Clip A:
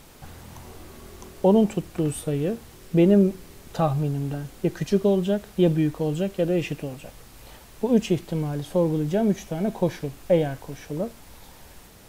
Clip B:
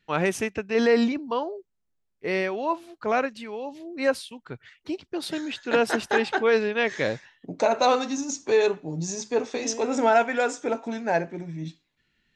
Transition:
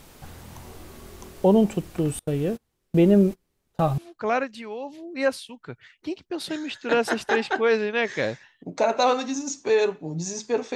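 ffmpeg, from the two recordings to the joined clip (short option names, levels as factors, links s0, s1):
-filter_complex "[0:a]asettb=1/sr,asplit=3[s0][s1][s2];[s0]atrim=end=2.194[s3];[s1]atrim=start=2.19:end=3.98,asetpts=PTS-STARTPTS,afade=t=in:d=0.004:c=qsin,afade=t=out:st=1.786:d=0.004:c=qsin,agate=range=0.0355:threshold=0.0224:ratio=16:release=100:detection=peak[s4];[s2]atrim=start=3.976[s5];[s3][s4]acrossfade=d=0.004:c1=hsin:c2=qsin[s6];[s6][s5]acrossfade=d=0.004:c1=qsin:c2=hsin,apad=whole_dur=10.75,atrim=end=10.75,atrim=end=3.982[s7];[1:a]atrim=start=2.798:end=9.57[s8];[s7][s8]acrossfade=d=0.004:c1=hsin:c2=hsin"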